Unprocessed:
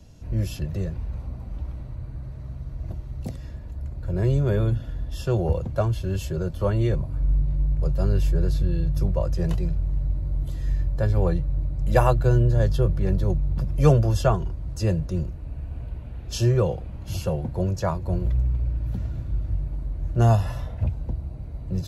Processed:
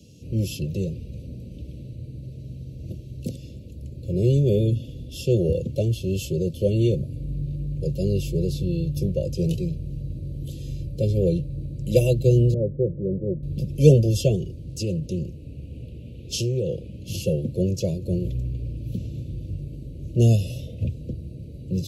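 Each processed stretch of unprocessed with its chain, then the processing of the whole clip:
0:12.54–0:13.43: Butterworth low-pass 650 Hz 96 dB per octave + low-shelf EQ 150 Hz −10.5 dB
0:14.63–0:17.21: downward compressor 4 to 1, threshold −24 dBFS + highs frequency-modulated by the lows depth 0.13 ms
whole clip: high-pass filter 130 Hz 12 dB per octave; dynamic equaliser 1,800 Hz, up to −5 dB, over −52 dBFS, Q 2.8; elliptic band-stop filter 510–2,700 Hz, stop band 40 dB; level +5.5 dB

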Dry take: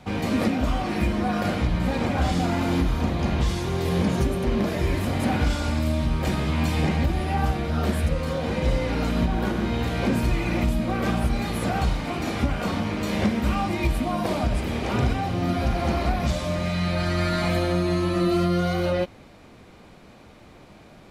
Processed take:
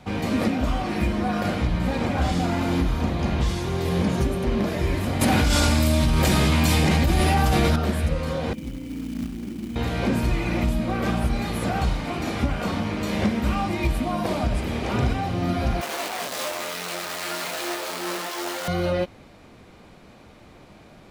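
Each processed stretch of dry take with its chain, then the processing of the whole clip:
0:05.21–0:07.76: high-shelf EQ 4,200 Hz +10.5 dB + envelope flattener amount 100%
0:08.53–0:09.76: formant resonators in series i + floating-point word with a short mantissa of 2 bits
0:15.81–0:18.68: sign of each sample alone + high-pass filter 400 Hz + micro pitch shift up and down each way 13 cents
whole clip: no processing

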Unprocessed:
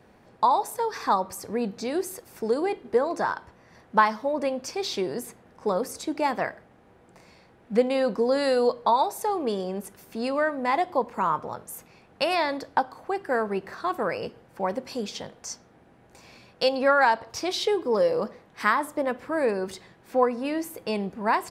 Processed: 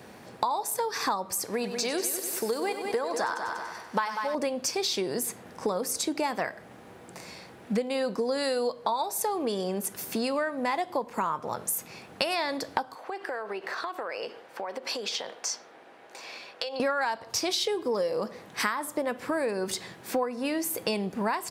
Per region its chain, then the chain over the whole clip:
0:01.44–0:04.35: low-shelf EQ 450 Hz −10 dB + echo machine with several playback heads 96 ms, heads first and second, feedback 43%, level −12 dB
0:12.95–0:16.80: three-way crossover with the lows and the highs turned down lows −23 dB, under 350 Hz, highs −12 dB, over 4,900 Hz + downward compressor 12 to 1, threshold −38 dBFS
whole clip: high-pass filter 98 Hz; high-shelf EQ 3,400 Hz +9 dB; downward compressor 6 to 1, threshold −34 dBFS; level +7.5 dB

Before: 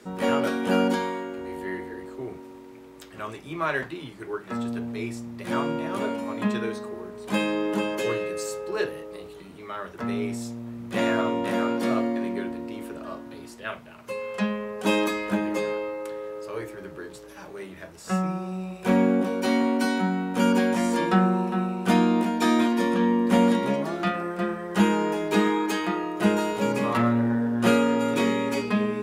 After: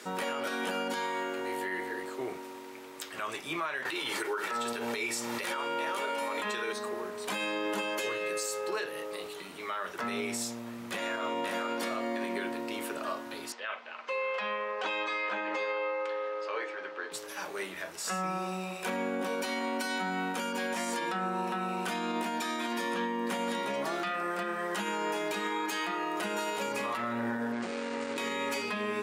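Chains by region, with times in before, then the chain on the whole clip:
0:03.85–0:06.73: high-pass filter 360 Hz 6 dB per octave + comb filter 2.2 ms, depth 35% + envelope flattener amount 70%
0:13.52–0:17.12: band-pass filter 450–4,500 Hz + high-frequency loss of the air 87 metres + comb filter 3.9 ms, depth 31%
0:27.52–0:28.18: running median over 41 samples + Chebyshev low-pass filter 9,400 Hz, order 10 + parametric band 120 Hz −5.5 dB 0.4 octaves
whole clip: high-pass filter 1,100 Hz 6 dB per octave; downward compressor 6 to 1, threshold −37 dBFS; brickwall limiter −32.5 dBFS; level +8.5 dB

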